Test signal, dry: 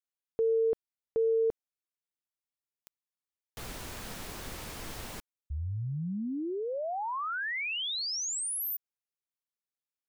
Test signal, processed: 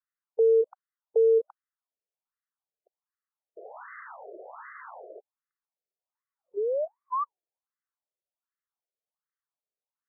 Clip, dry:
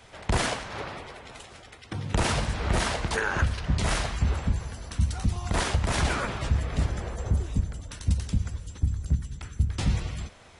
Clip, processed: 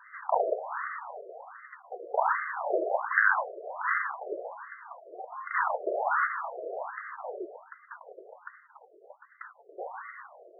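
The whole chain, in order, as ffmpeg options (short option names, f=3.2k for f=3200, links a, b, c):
-af "afftfilt=real='re*between(b*sr/4096,190,2100)':imag='im*between(b*sr/4096,190,2100)':win_size=4096:overlap=0.75,afftfilt=real='re*between(b*sr/1024,480*pow(1600/480,0.5+0.5*sin(2*PI*1.3*pts/sr))/1.41,480*pow(1600/480,0.5+0.5*sin(2*PI*1.3*pts/sr))*1.41)':imag='im*between(b*sr/1024,480*pow(1600/480,0.5+0.5*sin(2*PI*1.3*pts/sr))/1.41,480*pow(1600/480,0.5+0.5*sin(2*PI*1.3*pts/sr))*1.41)':win_size=1024:overlap=0.75,volume=7dB"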